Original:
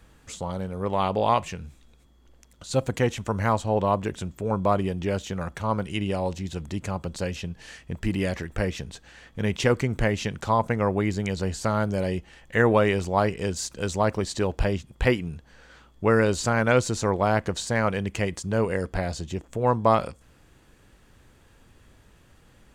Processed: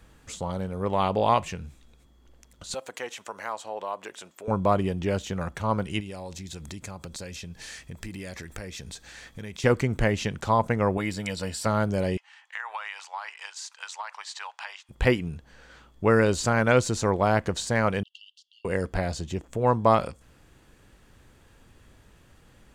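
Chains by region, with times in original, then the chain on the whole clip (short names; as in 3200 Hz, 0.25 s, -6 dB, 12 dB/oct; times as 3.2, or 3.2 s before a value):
2.74–4.48 HPF 600 Hz + compressor 1.5:1, threshold -40 dBFS
6–9.64 high shelf 2600 Hz +10 dB + compressor 4:1, threshold -36 dBFS + notch 2900 Hz, Q 9.6
10.97–11.66 tilt +2 dB/oct + notch 6500 Hz, Q 5.2 + notch comb 390 Hz
12.17–14.89 elliptic high-pass 870 Hz, stop band 80 dB + compressor 5:1, threshold -30 dBFS + air absorption 55 m
18.03–18.65 brick-wall FIR high-pass 2700 Hz + air absorption 340 m
whole clip: dry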